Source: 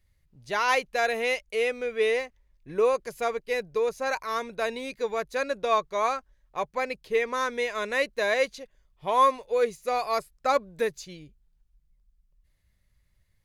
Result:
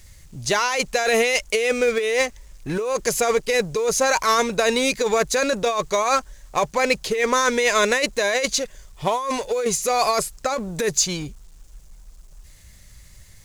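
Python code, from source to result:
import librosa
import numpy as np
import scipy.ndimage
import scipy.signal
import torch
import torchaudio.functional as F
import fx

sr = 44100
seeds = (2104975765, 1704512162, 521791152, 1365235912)

y = fx.law_mismatch(x, sr, coded='mu')
y = fx.peak_eq(y, sr, hz=7000.0, db=11.5, octaves=1.1)
y = fx.over_compress(y, sr, threshold_db=-28.0, ratio=-1.0)
y = y * 10.0 ** (8.5 / 20.0)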